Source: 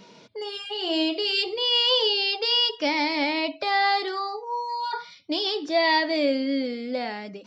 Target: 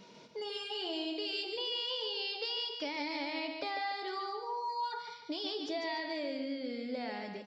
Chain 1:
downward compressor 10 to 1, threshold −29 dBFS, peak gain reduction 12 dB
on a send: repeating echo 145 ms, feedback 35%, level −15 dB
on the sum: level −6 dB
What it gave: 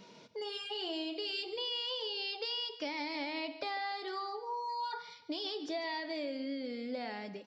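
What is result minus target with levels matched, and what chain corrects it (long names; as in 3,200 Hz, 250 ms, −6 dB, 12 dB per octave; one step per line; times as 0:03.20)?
echo-to-direct −9 dB
downward compressor 10 to 1, threshold −29 dBFS, peak gain reduction 12 dB
on a send: repeating echo 145 ms, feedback 35%, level −6 dB
on the sum: level −6 dB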